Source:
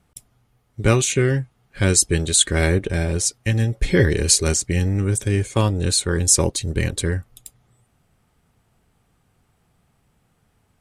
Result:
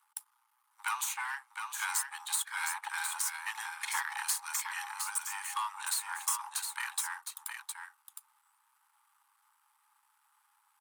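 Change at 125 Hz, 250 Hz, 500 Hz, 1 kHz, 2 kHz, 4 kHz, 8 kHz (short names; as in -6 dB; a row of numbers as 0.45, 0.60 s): under -40 dB, under -40 dB, under -40 dB, -3.5 dB, -8.0 dB, -15.5 dB, -14.0 dB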